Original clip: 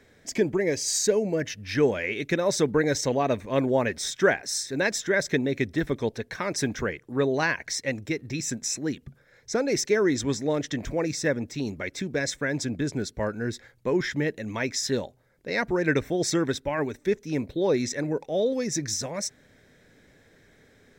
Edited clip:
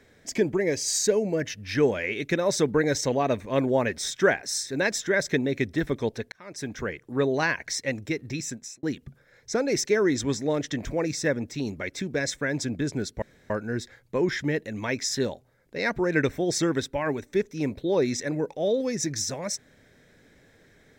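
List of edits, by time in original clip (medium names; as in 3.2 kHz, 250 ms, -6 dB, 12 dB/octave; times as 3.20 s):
6.32–7.04 s: fade in
8.31–8.83 s: fade out
13.22 s: insert room tone 0.28 s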